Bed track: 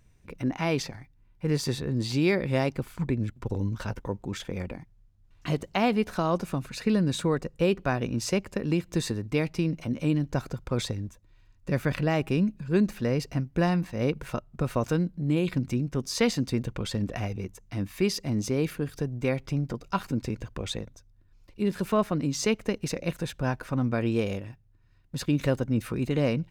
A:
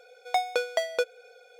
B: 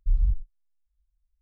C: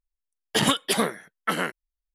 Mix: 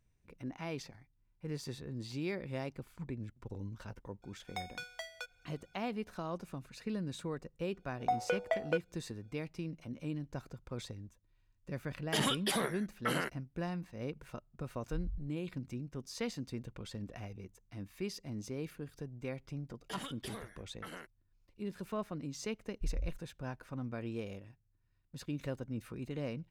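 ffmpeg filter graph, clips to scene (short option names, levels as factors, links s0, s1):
-filter_complex "[1:a]asplit=2[s0][s1];[3:a]asplit=2[s2][s3];[2:a]asplit=2[s4][s5];[0:a]volume=0.2[s6];[s0]highpass=f=840:w=0.5412,highpass=f=840:w=1.3066[s7];[s1]afwtdn=0.0251[s8];[s2]alimiter=limit=0.133:level=0:latency=1:release=30[s9];[s3]alimiter=limit=0.119:level=0:latency=1:release=95[s10];[s7]atrim=end=1.59,asetpts=PTS-STARTPTS,volume=0.266,afade=t=in:d=0.004:c=hsin,afade=t=out:st=1.586:d=0.004:c=hsin,adelay=4220[s11];[s8]atrim=end=1.59,asetpts=PTS-STARTPTS,volume=0.531,afade=t=in:d=0.004:c=hsin,afade=t=out:st=1.586:d=0.004:c=hsin,adelay=7740[s12];[s9]atrim=end=2.14,asetpts=PTS-STARTPTS,volume=0.562,afade=t=in:d=0.004:c=hsin,afade=t=out:st=2.136:d=0.004:c=hsin,adelay=11580[s13];[s4]atrim=end=1.41,asetpts=PTS-STARTPTS,volume=0.133,afade=t=in:d=0.004:c=hsin,afade=t=out:st=1.406:d=0.004:c=hsin,adelay=14850[s14];[s10]atrim=end=2.14,asetpts=PTS-STARTPTS,volume=0.158,afade=t=in:d=0.004:c=hsin,afade=t=out:st=2.136:d=0.004:c=hsin,adelay=19350[s15];[s5]atrim=end=1.41,asetpts=PTS-STARTPTS,volume=0.2,afade=t=in:d=0.004:c=hsin,afade=t=out:st=1.406:d=0.004:c=hsin,adelay=22750[s16];[s6][s11][s12][s13][s14][s15][s16]amix=inputs=7:normalize=0"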